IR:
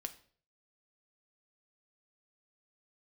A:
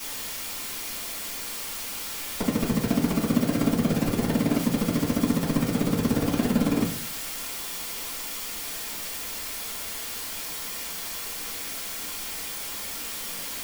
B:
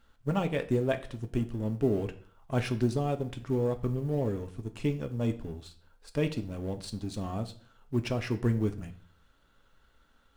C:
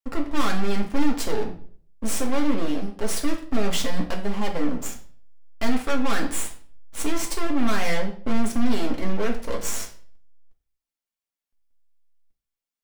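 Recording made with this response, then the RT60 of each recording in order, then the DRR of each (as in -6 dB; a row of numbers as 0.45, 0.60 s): B; 0.50, 0.50, 0.50 s; -9.0, 6.5, 0.0 dB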